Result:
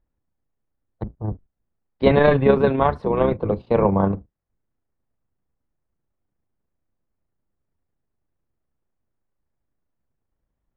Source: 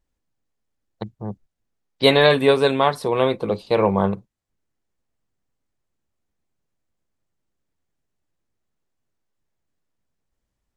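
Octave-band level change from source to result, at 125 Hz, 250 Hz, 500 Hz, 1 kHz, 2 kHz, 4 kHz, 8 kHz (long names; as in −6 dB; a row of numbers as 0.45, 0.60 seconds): +4.0 dB, +2.0 dB, −0.5 dB, −1.0 dB, −4.5 dB, −14.5 dB, can't be measured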